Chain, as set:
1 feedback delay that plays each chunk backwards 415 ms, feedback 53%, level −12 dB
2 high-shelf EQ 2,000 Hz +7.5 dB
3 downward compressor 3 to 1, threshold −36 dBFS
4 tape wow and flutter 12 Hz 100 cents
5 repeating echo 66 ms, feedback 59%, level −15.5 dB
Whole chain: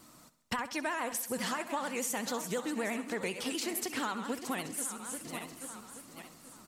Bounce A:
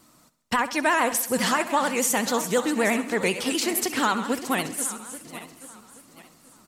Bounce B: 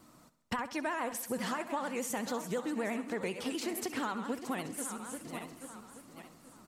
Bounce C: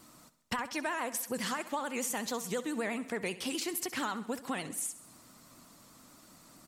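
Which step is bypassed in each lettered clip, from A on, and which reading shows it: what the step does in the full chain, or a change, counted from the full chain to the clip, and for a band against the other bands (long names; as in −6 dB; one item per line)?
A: 3, average gain reduction 7.5 dB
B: 2, 8 kHz band −4.5 dB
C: 1, change in momentary loudness spread −7 LU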